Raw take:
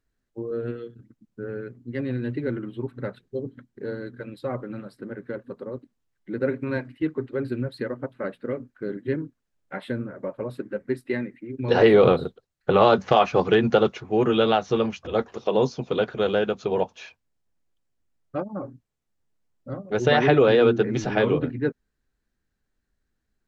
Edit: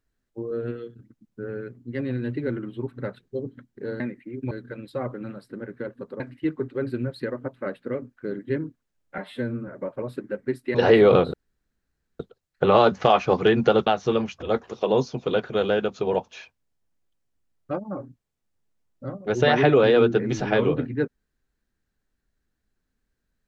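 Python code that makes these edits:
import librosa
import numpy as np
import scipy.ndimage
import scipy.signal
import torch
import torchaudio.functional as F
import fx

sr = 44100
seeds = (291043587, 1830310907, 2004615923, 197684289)

y = fx.edit(x, sr, fx.cut(start_s=5.69, length_s=1.09),
    fx.stretch_span(start_s=9.76, length_s=0.33, factor=1.5),
    fx.move(start_s=11.16, length_s=0.51, to_s=4.0),
    fx.insert_room_tone(at_s=12.26, length_s=0.86),
    fx.cut(start_s=13.93, length_s=0.58), tone=tone)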